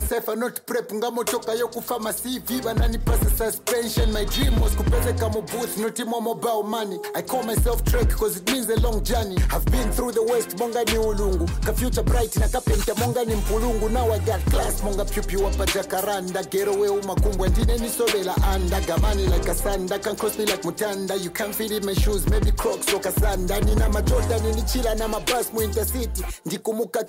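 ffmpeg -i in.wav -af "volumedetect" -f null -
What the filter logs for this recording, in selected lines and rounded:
mean_volume: -22.1 dB
max_volume: -13.5 dB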